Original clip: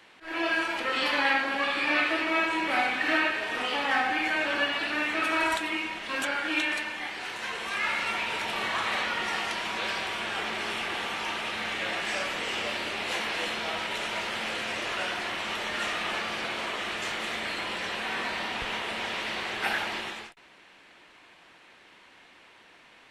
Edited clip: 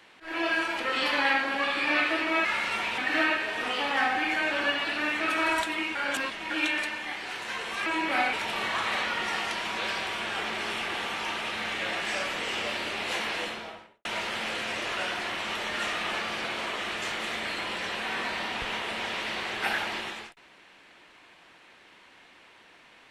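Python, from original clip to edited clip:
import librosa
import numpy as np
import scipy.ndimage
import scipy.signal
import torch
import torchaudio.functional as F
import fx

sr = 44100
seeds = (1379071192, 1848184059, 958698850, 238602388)

y = fx.studio_fade_out(x, sr, start_s=13.29, length_s=0.76)
y = fx.edit(y, sr, fx.swap(start_s=2.45, length_s=0.47, other_s=7.8, other_length_s=0.53),
    fx.reverse_span(start_s=5.89, length_s=0.55), tone=tone)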